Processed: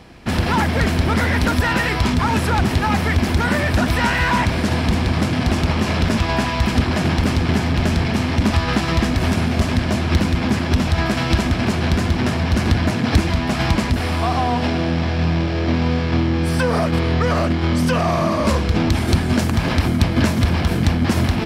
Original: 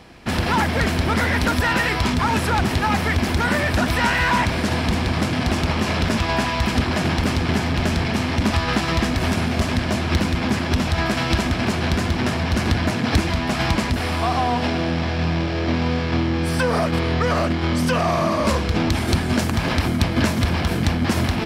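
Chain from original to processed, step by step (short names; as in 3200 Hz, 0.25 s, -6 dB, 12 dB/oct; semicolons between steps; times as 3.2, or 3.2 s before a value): low shelf 320 Hz +4 dB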